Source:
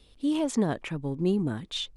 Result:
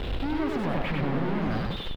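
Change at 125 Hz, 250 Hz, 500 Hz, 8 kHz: +2.5 dB, -1.5 dB, -0.5 dB, under -15 dB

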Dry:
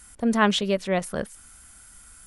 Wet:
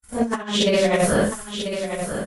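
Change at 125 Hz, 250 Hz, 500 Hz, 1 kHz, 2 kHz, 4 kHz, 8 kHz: +6.0 dB, +2.5 dB, +7.0 dB, +1.0 dB, +2.0 dB, +5.0 dB, +8.5 dB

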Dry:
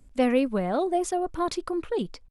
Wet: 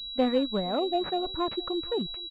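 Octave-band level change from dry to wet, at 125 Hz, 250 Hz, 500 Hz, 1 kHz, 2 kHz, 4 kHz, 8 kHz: -3.5 dB, -3.0 dB, -2.5 dB, -3.0 dB, -6.5 dB, +10.5 dB, under -25 dB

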